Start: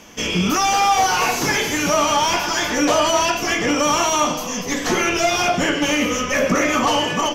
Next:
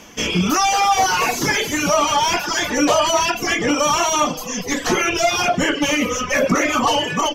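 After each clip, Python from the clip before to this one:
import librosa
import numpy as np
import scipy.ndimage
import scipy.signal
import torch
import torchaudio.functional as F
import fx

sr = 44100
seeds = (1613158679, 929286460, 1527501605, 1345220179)

y = fx.dereverb_blind(x, sr, rt60_s=0.94)
y = y * 10.0 ** (2.0 / 20.0)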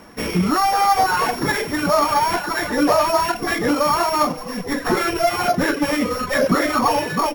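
y = np.r_[np.sort(x[:len(x) // 8 * 8].reshape(-1, 8), axis=1).ravel(), x[len(x) // 8 * 8:]]
y = fx.high_shelf_res(y, sr, hz=2300.0, db=-7.5, q=1.5)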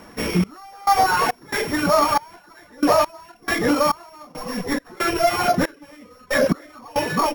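y = fx.step_gate(x, sr, bpm=69, pattern='xx..xx.xxx...x..', floor_db=-24.0, edge_ms=4.5)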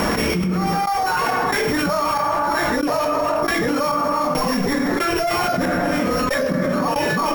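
y = fx.rev_plate(x, sr, seeds[0], rt60_s=1.0, hf_ratio=0.55, predelay_ms=0, drr_db=6.5)
y = fx.env_flatten(y, sr, amount_pct=100)
y = y * 10.0 ** (-8.5 / 20.0)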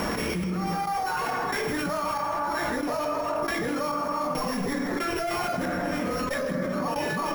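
y = x + 10.0 ** (-11.5 / 20.0) * np.pad(x, (int(163 * sr / 1000.0), 0))[:len(x)]
y = y * 10.0 ** (-8.5 / 20.0)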